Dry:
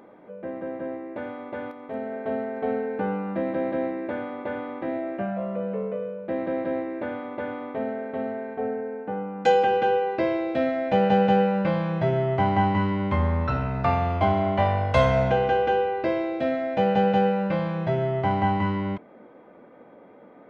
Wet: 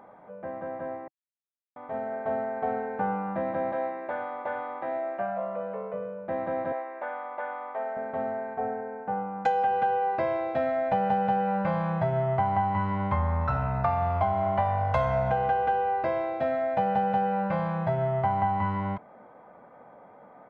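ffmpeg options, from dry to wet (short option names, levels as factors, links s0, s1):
-filter_complex "[0:a]asettb=1/sr,asplit=3[s0][s1][s2];[s0]atrim=end=3.724[s3];[s1]atrim=start=3.72:end=5.94,asetpts=PTS-STARTPTS,afade=t=in:d=0.004:c=qsin,afade=t=out:st=2.216:d=0.004:c=qsin,bass=f=250:g=-12,treble=f=4000:g=3[s4];[s2]atrim=start=5.936[s5];[s3][s4]acrossfade=d=0.004:c1=hsin:c2=qsin[s6];[s6][s5]acrossfade=d=0.004:c1=qsin:c2=hsin,asettb=1/sr,asplit=3[s7][s8][s9];[s7]atrim=end=6.724[s10];[s8]atrim=start=6.72:end=7.97,asetpts=PTS-STARTPTS,afade=t=in:d=0.004:c=qsin,afade=t=out:st=1.246:d=0.004:c=qsin,highpass=560,lowpass=3600[s11];[s9]atrim=start=7.966[s12];[s10][s11]acrossfade=d=0.004:c1=hsin:c2=qsin[s13];[s13][s12]acrossfade=d=0.004:c1=qsin:c2=hsin,asplit=3[s14][s15][s16];[s14]atrim=end=1.08,asetpts=PTS-STARTPTS,afade=t=out:st=1.076:d=0.004:c=hsin[s17];[s15]atrim=start=1.08:end=1.76,asetpts=PTS-STARTPTS,volume=0[s18];[s16]atrim=start=1.76,asetpts=PTS-STARTPTS,afade=t=in:d=0.004:c=hsin[s19];[s17][s18][s19]concat=n=3:v=0:a=1,firequalizer=gain_entry='entry(140,0);entry(310,-11);entry(750,5);entry(2800,-8)':delay=0.05:min_phase=1,acompressor=threshold=0.0794:ratio=6"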